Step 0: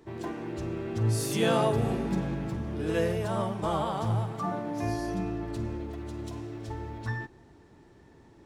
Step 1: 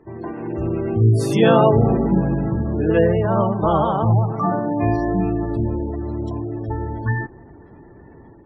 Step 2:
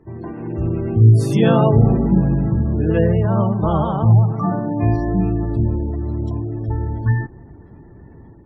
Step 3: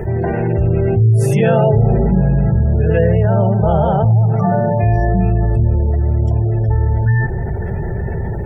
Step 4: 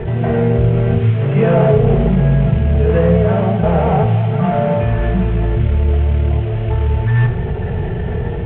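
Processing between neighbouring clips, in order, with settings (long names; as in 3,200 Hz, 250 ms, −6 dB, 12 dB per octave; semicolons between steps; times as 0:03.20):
gate on every frequency bin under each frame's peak −25 dB strong; high-shelf EQ 3,600 Hz −12 dB; automatic gain control gain up to 7 dB; level +5 dB
bass and treble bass +9 dB, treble +2 dB; level −3.5 dB
phaser with its sweep stopped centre 1,100 Hz, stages 6; hollow resonant body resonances 380/2,600 Hz, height 6 dB; envelope flattener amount 70%; level −1 dB
variable-slope delta modulation 16 kbit/s; convolution reverb RT60 0.70 s, pre-delay 3 ms, DRR 4.5 dB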